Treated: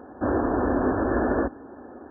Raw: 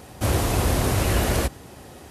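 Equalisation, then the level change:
linear-phase brick-wall low-pass 1,800 Hz
low shelf with overshoot 200 Hz −9 dB, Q 3
0.0 dB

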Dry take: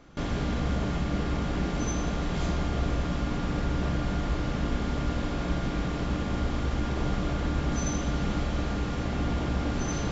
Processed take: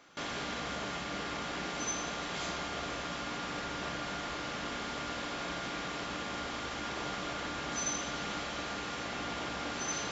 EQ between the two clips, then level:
high-pass filter 1,300 Hz 6 dB per octave
+2.5 dB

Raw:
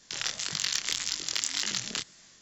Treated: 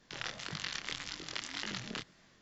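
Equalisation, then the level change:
head-to-tape spacing loss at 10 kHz 28 dB
+1.0 dB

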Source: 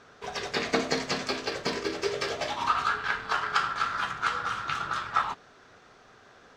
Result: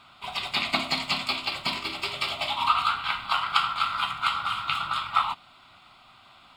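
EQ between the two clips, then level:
tilt shelving filter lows −5.5 dB, about 1,300 Hz
phaser with its sweep stopped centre 1,700 Hz, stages 6
+5.5 dB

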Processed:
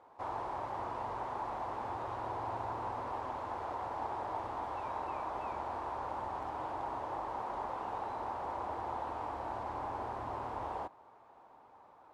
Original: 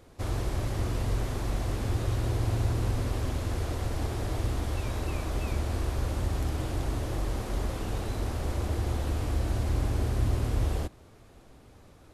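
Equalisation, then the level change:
resonant band-pass 910 Hz, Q 4.9
+10.0 dB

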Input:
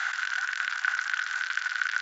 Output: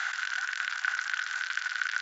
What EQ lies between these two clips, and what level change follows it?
dynamic equaliser 1,200 Hz, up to −3 dB, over −38 dBFS, Q 0.74
0.0 dB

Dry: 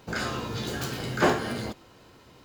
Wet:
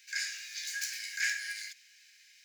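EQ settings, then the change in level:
Chebyshev high-pass with heavy ripple 1,600 Hz, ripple 9 dB
dynamic equaliser 3,200 Hz, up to −6 dB, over −55 dBFS, Q 2.2
+6.0 dB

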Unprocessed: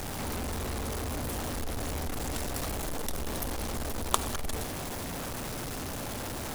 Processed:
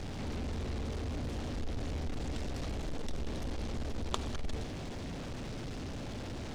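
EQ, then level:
high-frequency loss of the air 140 metres
parametric band 1,100 Hz −8.5 dB 2.1 octaves
−1.0 dB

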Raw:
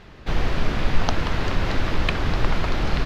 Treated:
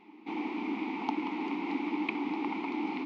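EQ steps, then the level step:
formant filter u
linear-phase brick-wall high-pass 180 Hz
+5.5 dB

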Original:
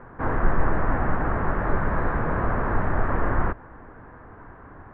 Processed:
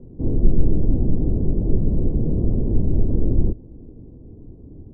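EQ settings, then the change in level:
inverse Chebyshev low-pass filter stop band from 1,700 Hz, stop band 70 dB
+6.5 dB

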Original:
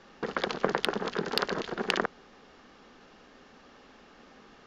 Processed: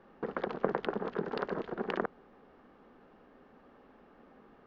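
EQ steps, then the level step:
head-to-tape spacing loss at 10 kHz 24 dB
low-shelf EQ 190 Hz −4.5 dB
parametric band 6,300 Hz −11.5 dB 3 octaves
0.0 dB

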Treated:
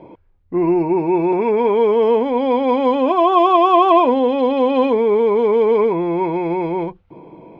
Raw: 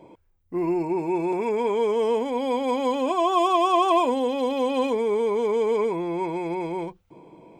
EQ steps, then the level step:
high-frequency loss of the air 300 metres
+9.0 dB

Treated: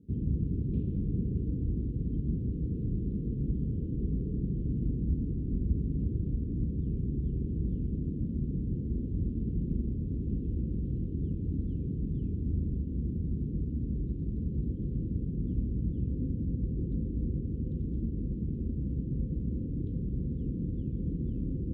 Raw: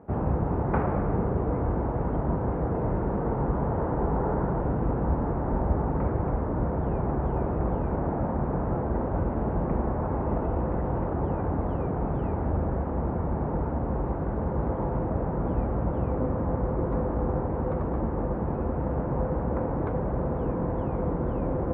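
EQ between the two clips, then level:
inverse Chebyshev band-stop filter 650–2,100 Hz, stop band 40 dB
flat-topped bell 800 Hz −9 dB 2.7 octaves
−3.0 dB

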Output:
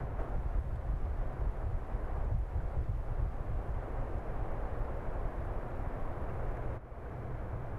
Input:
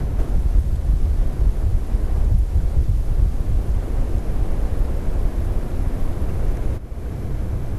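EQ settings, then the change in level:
three-way crossover with the lows and the highs turned down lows −14 dB, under 530 Hz, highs −21 dB, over 2,000 Hz
parametric band 120 Hz +6.5 dB 0.31 octaves
−3.5 dB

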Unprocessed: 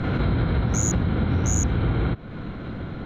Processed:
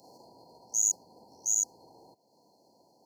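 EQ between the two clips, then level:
high-pass filter 610 Hz 6 dB per octave
linear-phase brick-wall band-stop 1,000–4,200 Hz
first difference
+2.5 dB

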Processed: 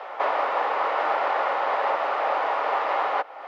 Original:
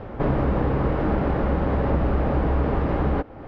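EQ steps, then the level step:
high-pass filter 700 Hz 24 dB per octave
notch filter 1,600 Hz, Q 13
+8.5 dB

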